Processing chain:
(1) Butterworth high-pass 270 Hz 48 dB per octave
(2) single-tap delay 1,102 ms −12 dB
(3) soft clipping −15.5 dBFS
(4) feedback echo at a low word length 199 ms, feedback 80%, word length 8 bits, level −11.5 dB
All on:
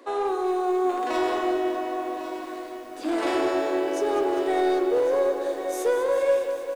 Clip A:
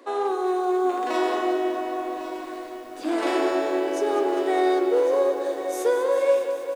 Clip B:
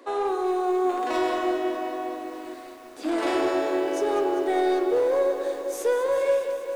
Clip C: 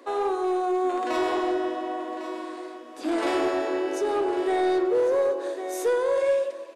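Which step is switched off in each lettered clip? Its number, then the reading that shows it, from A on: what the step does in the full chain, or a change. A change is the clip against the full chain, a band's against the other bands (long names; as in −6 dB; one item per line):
3, distortion level −21 dB
2, change in momentary loudness spread +1 LU
4, change in crest factor −2.5 dB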